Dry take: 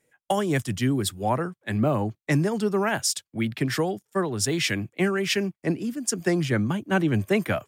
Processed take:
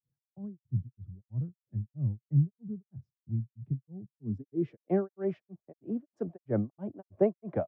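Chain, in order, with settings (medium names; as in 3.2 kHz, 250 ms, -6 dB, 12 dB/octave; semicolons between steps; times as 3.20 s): granulator 255 ms, grains 3.1 per s; low-pass sweep 130 Hz -> 660 Hz, 4.00–4.92 s; trim -4.5 dB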